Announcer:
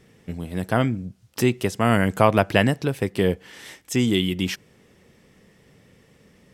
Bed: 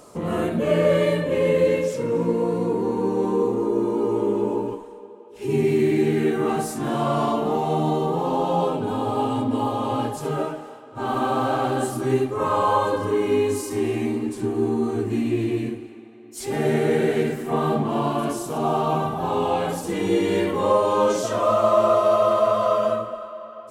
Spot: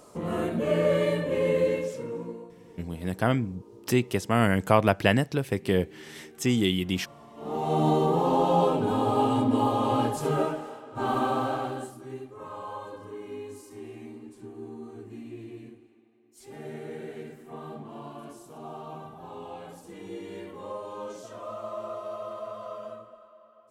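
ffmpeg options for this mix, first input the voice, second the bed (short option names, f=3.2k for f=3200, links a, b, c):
-filter_complex "[0:a]adelay=2500,volume=-3.5dB[a];[1:a]volume=23dB,afade=t=out:st=1.58:d=0.94:silence=0.0668344,afade=t=in:st=7.35:d=0.52:silence=0.0398107,afade=t=out:st=10.9:d=1.06:silence=0.125893[b];[a][b]amix=inputs=2:normalize=0"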